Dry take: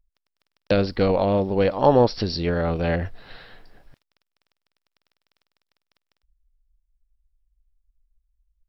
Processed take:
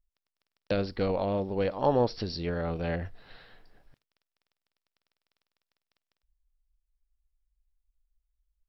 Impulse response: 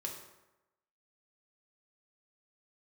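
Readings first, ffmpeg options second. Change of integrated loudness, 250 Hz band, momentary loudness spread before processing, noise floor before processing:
−8.5 dB, −8.5 dB, 8 LU, −82 dBFS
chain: -filter_complex "[0:a]asplit=2[link_01][link_02];[1:a]atrim=start_sample=2205,afade=type=out:start_time=0.17:duration=0.01,atrim=end_sample=7938,asetrate=52920,aresample=44100[link_03];[link_02][link_03]afir=irnorm=-1:irlink=0,volume=-18dB[link_04];[link_01][link_04]amix=inputs=2:normalize=0,volume=-9dB"

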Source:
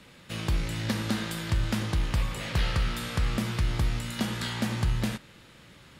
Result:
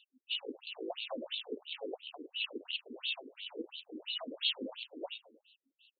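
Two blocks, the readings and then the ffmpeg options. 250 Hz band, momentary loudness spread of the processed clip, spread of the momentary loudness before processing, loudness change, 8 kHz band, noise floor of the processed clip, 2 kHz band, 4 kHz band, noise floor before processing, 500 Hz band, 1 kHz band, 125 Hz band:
−15.0 dB, 11 LU, 3 LU, −9.5 dB, below −40 dB, below −85 dBFS, −9.0 dB, −0.5 dB, −53 dBFS, −3.5 dB, −14.0 dB, below −40 dB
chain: -filter_complex "[0:a]afftdn=noise_reduction=17:noise_floor=-40,bandreject=frequency=60:width_type=h:width=6,bandreject=frequency=120:width_type=h:width=6,bandreject=frequency=180:width_type=h:width=6,bandreject=frequency=240:width_type=h:width=6,bandreject=frequency=300:width_type=h:width=6,afftfilt=real='re*(1-between(b*sr/4096,270,2600))':imag='im*(1-between(b*sr/4096,270,2600))':win_size=4096:overlap=0.75,firequalizer=gain_entry='entry(790,0);entry(4400,-7);entry(7600,-2);entry(13000,-4)':delay=0.05:min_phase=1,acompressor=threshold=-29dB:ratio=16,asoftclip=type=tanh:threshold=-36dB,flanger=delay=3.2:depth=4.6:regen=58:speed=0.73:shape=sinusoidal,asplit=2[link_01][link_02];[link_02]highpass=frequency=720:poles=1,volume=13dB,asoftclip=type=tanh:threshold=-36.5dB[link_03];[link_01][link_03]amix=inputs=2:normalize=0,lowpass=frequency=3000:poles=1,volume=-6dB,asplit=2[link_04][link_05];[link_05]adelay=101,lowpass=frequency=2000:poles=1,volume=-13dB,asplit=2[link_06][link_07];[link_07]adelay=101,lowpass=frequency=2000:poles=1,volume=0.43,asplit=2[link_08][link_09];[link_09]adelay=101,lowpass=frequency=2000:poles=1,volume=0.43,asplit=2[link_10][link_11];[link_11]adelay=101,lowpass=frequency=2000:poles=1,volume=0.43[link_12];[link_04][link_06][link_08][link_10][link_12]amix=inputs=5:normalize=0,afftfilt=real='re*between(b*sr/1024,350*pow(3200/350,0.5+0.5*sin(2*PI*2.9*pts/sr))/1.41,350*pow(3200/350,0.5+0.5*sin(2*PI*2.9*pts/sr))*1.41)':imag='im*between(b*sr/1024,350*pow(3200/350,0.5+0.5*sin(2*PI*2.9*pts/sr))/1.41,350*pow(3200/350,0.5+0.5*sin(2*PI*2.9*pts/sr))*1.41)':win_size=1024:overlap=0.75,volume=18dB"

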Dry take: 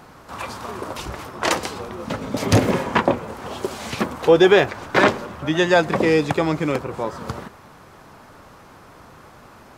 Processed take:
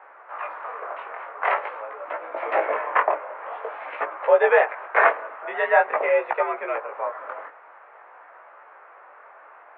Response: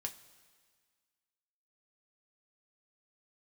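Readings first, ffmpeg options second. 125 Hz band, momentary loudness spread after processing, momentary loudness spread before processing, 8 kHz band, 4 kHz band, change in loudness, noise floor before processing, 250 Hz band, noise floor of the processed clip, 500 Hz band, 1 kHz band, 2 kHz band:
below −40 dB, 16 LU, 16 LU, below −40 dB, below −15 dB, −3.5 dB, −46 dBFS, below −20 dB, −49 dBFS, −3.5 dB, +1.0 dB, −0.5 dB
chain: -af "highpass=frequency=480:width_type=q:width=0.5412,highpass=frequency=480:width_type=q:width=1.307,lowpass=frequency=2200:width_type=q:width=0.5176,lowpass=frequency=2200:width_type=q:width=0.7071,lowpass=frequency=2200:width_type=q:width=1.932,afreqshift=67,flanger=delay=15.5:depth=7.7:speed=0.47,volume=3dB"

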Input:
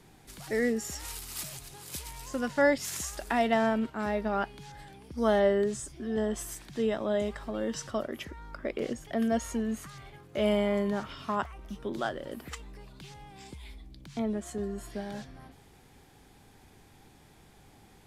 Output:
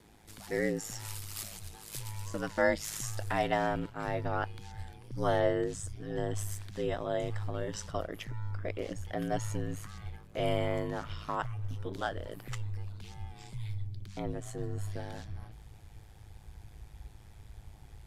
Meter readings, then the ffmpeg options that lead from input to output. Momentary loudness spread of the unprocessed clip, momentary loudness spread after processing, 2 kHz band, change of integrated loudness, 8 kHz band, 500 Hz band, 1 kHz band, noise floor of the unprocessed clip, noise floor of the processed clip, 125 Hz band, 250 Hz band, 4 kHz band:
21 LU, 22 LU, −3.0 dB, −4.5 dB, −3.0 dB, −4.5 dB, −2.5 dB, −58 dBFS, −53 dBFS, +6.5 dB, −7.0 dB, −3.0 dB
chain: -af "asubboost=boost=11:cutoff=55,aeval=exprs='val(0)*sin(2*PI*53*n/s)':channel_layout=same"

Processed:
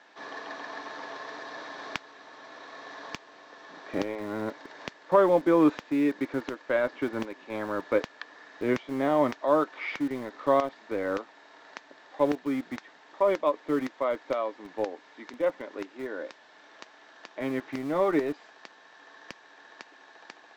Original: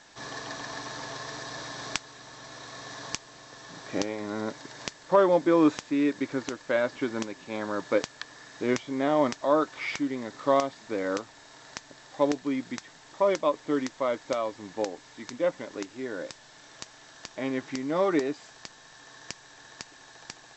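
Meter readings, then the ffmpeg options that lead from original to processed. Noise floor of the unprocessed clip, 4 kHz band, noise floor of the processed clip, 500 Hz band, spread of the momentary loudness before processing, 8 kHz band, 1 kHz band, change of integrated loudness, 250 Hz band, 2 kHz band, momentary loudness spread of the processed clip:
−53 dBFS, −6.0 dB, −55 dBFS, 0.0 dB, 20 LU, below −10 dB, 0.0 dB, 0.0 dB, −0.5 dB, −1.0 dB, 20 LU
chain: -filter_complex "[0:a]lowpass=2800,acrossover=split=230[link_01][link_02];[link_01]aeval=exprs='val(0)*gte(abs(val(0)),0.00944)':channel_layout=same[link_03];[link_03][link_02]amix=inputs=2:normalize=0"

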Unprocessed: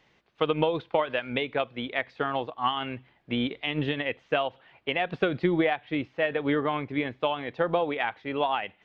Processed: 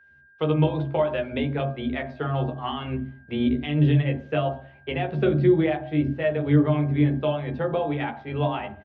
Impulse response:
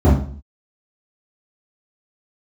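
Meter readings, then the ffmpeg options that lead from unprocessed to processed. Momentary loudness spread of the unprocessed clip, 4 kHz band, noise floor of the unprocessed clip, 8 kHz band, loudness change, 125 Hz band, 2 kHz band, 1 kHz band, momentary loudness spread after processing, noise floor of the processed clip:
5 LU, −4.0 dB, −65 dBFS, can't be measured, +4.0 dB, +14.0 dB, −3.5 dB, −2.0 dB, 10 LU, −54 dBFS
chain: -filter_complex "[0:a]agate=range=-33dB:threshold=-57dB:ratio=3:detection=peak,aeval=exprs='val(0)+0.00355*sin(2*PI*1600*n/s)':channel_layout=same,asplit=2[link_01][link_02];[link_02]adelay=13,volume=-5dB[link_03];[link_01][link_03]amix=inputs=2:normalize=0,asplit=2[link_04][link_05];[1:a]atrim=start_sample=2205[link_06];[link_05][link_06]afir=irnorm=-1:irlink=0,volume=-24.5dB[link_07];[link_04][link_07]amix=inputs=2:normalize=0,volume=-5dB"

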